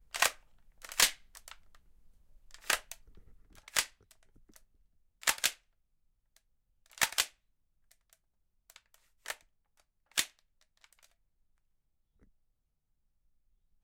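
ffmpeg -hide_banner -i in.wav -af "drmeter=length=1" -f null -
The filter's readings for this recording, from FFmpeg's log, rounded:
Channel 1: DR: 21.2
Overall DR: 21.2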